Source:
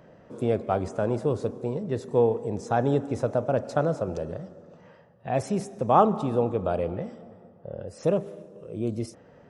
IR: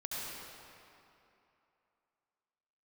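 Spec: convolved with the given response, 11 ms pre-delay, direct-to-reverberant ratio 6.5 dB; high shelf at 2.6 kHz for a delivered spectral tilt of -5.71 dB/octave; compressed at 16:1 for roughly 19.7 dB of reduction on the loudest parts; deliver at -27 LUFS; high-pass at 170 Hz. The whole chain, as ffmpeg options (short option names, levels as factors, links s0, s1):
-filter_complex "[0:a]highpass=170,highshelf=f=2600:g=5,acompressor=threshold=0.0251:ratio=16,asplit=2[s0][s1];[1:a]atrim=start_sample=2205,adelay=11[s2];[s1][s2]afir=irnorm=-1:irlink=0,volume=0.355[s3];[s0][s3]amix=inputs=2:normalize=0,volume=3.55"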